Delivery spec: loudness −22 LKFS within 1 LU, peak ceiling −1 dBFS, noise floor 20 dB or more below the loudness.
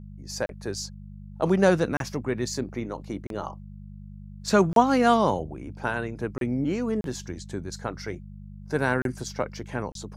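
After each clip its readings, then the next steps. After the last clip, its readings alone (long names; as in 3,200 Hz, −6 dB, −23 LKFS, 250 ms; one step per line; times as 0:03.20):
number of dropouts 8; longest dropout 32 ms; mains hum 50 Hz; hum harmonics up to 200 Hz; level of the hum −40 dBFS; integrated loudness −27.0 LKFS; sample peak −4.0 dBFS; target loudness −22.0 LKFS
→ repair the gap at 0:00.46/0:01.97/0:03.27/0:04.73/0:06.38/0:07.01/0:09.02/0:09.92, 32 ms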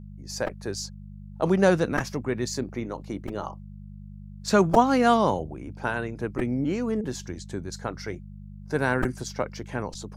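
number of dropouts 0; mains hum 50 Hz; hum harmonics up to 150 Hz; level of the hum −41 dBFS
→ hum removal 50 Hz, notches 3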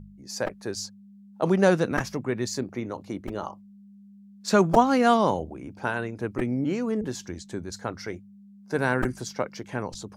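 mains hum none found; integrated loudness −26.5 LKFS; sample peak −4.0 dBFS; target loudness −22.0 LKFS
→ level +4.5 dB
brickwall limiter −1 dBFS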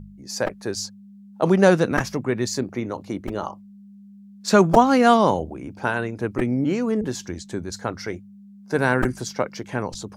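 integrated loudness −22.0 LKFS; sample peak −1.0 dBFS; background noise floor −46 dBFS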